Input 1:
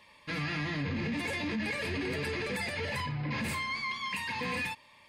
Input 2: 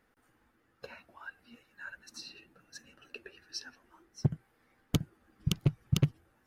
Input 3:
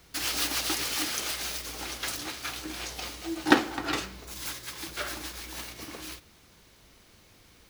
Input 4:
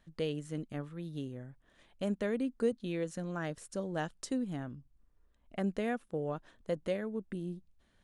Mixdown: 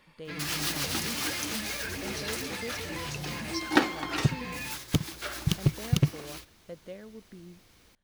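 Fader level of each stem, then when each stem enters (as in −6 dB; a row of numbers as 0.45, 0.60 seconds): −5.0, +3.0, −2.5, −9.0 decibels; 0.00, 0.00, 0.25, 0.00 seconds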